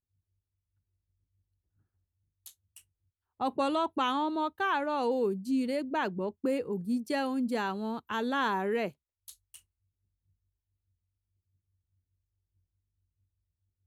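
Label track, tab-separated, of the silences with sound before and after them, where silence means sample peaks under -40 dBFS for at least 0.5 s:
2.780000	3.400000	silence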